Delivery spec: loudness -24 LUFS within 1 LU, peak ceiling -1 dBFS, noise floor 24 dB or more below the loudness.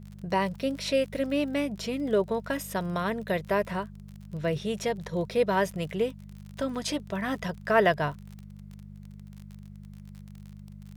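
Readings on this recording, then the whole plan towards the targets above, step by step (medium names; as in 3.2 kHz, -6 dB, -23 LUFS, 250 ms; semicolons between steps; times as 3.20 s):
tick rate 43 per s; hum 50 Hz; highest harmonic 200 Hz; hum level -43 dBFS; loudness -29.0 LUFS; peak level -10.0 dBFS; loudness target -24.0 LUFS
-> de-click; de-hum 50 Hz, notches 4; trim +5 dB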